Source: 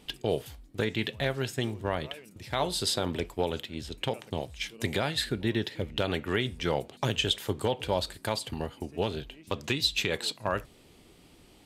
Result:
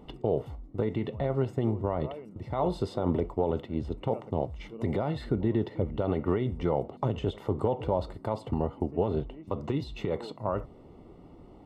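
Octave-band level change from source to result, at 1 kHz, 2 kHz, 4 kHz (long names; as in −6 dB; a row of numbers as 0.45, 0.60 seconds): 0.0, −13.5, −18.0 decibels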